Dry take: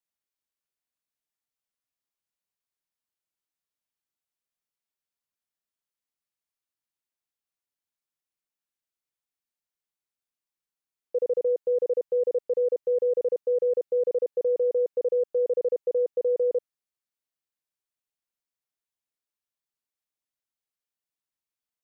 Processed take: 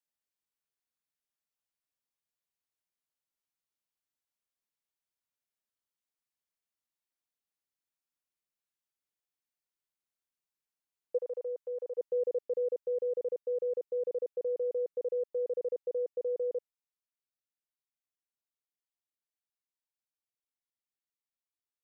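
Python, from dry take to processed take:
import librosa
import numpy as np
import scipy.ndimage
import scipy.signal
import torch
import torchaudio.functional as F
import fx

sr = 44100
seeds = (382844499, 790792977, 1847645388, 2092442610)

y = fx.highpass(x, sr, hz=740.0, slope=12, at=(11.17, 11.97), fade=0.02)
y = fx.rider(y, sr, range_db=4, speed_s=2.0)
y = F.gain(torch.from_numpy(y), -7.5).numpy()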